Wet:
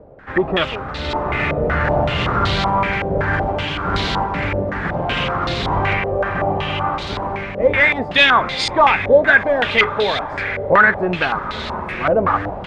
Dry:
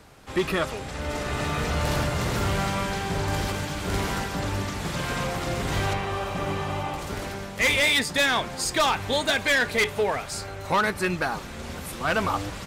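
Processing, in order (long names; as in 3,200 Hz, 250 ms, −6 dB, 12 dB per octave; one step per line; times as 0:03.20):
feedback delay with all-pass diffusion 875 ms, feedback 47%, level −13 dB
low-pass on a step sequencer 5.3 Hz 560–3,900 Hz
level +5 dB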